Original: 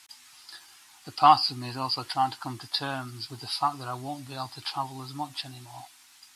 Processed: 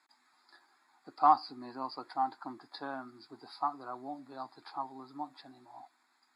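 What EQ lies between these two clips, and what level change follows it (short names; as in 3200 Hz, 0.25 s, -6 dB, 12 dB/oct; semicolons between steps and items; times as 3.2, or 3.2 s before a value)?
running mean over 15 samples; HPF 220 Hz 24 dB/oct; -5.0 dB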